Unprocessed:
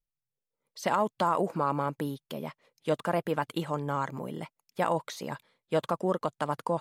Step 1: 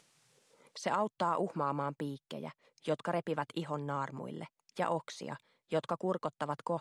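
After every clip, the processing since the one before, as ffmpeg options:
-filter_complex "[0:a]lowpass=f=9400:w=0.5412,lowpass=f=9400:w=1.3066,acrossover=split=140[s0][s1];[s1]acompressor=mode=upward:threshold=0.0158:ratio=2.5[s2];[s0][s2]amix=inputs=2:normalize=0,volume=0.531"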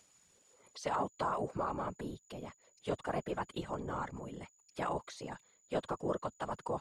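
-af "aeval=exprs='val(0)+0.000631*sin(2*PI*6900*n/s)':c=same,afftfilt=real='hypot(re,im)*cos(2*PI*random(0))':imag='hypot(re,im)*sin(2*PI*random(1))':win_size=512:overlap=0.75,volume=1.5"

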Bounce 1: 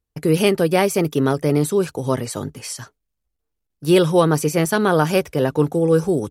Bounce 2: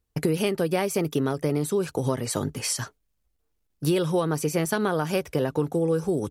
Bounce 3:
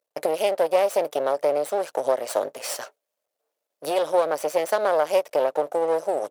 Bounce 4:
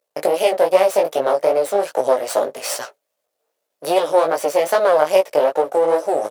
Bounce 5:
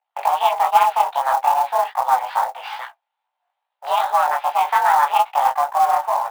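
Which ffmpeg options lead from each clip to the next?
-af "acompressor=threshold=0.0562:ratio=6,volume=1.5"
-af "aeval=exprs='max(val(0),0)':c=same,highpass=f=580:t=q:w=4.9,volume=1.12"
-af "flanger=delay=15.5:depth=4.7:speed=2.5,volume=2.82"
-af "highpass=f=180:t=q:w=0.5412,highpass=f=180:t=q:w=1.307,lowpass=f=3400:t=q:w=0.5176,lowpass=f=3400:t=q:w=0.7071,lowpass=f=3400:t=q:w=1.932,afreqshift=270,flanger=delay=15.5:depth=5.7:speed=2.4,acrusher=bits=5:mode=log:mix=0:aa=0.000001,volume=1.26"

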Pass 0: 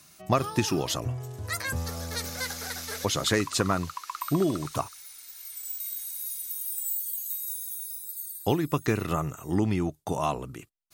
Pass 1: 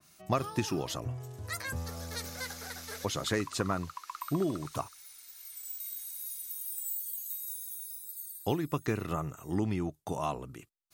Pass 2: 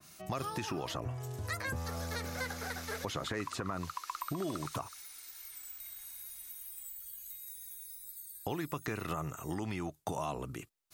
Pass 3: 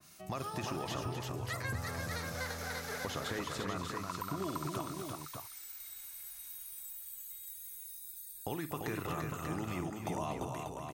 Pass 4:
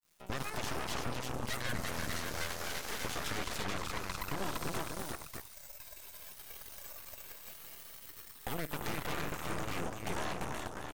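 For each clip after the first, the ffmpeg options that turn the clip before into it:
-af "adynamicequalizer=threshold=0.00891:dfrequency=2200:dqfactor=0.7:tfrequency=2200:tqfactor=0.7:attack=5:release=100:ratio=0.375:range=2:mode=cutabove:tftype=highshelf,volume=0.531"
-filter_complex "[0:a]alimiter=level_in=1.19:limit=0.0631:level=0:latency=1:release=103,volume=0.841,acrossover=split=660|2700[s0][s1][s2];[s0]acompressor=threshold=0.00794:ratio=4[s3];[s1]acompressor=threshold=0.00794:ratio=4[s4];[s2]acompressor=threshold=0.00251:ratio=4[s5];[s3][s4][s5]amix=inputs=3:normalize=0,volume=1.78"
-af "aecho=1:1:53|245|342|589:0.2|0.316|0.596|0.501,volume=0.75"
-af "aeval=exprs='0.0708*(cos(1*acos(clip(val(0)/0.0708,-1,1)))-cos(1*PI/2))+0.0316*(cos(8*acos(clip(val(0)/0.0708,-1,1)))-cos(8*PI/2))':c=same,aeval=exprs='sgn(val(0))*max(abs(val(0))-0.002,0)':c=same,volume=0.562"

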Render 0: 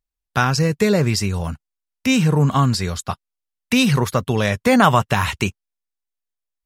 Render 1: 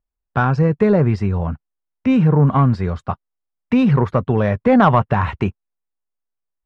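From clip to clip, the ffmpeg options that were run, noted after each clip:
-af "lowpass=1300,acontrast=34,volume=0.794"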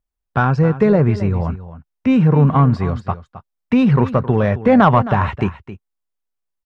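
-af "aecho=1:1:266:0.188,volume=1.12"

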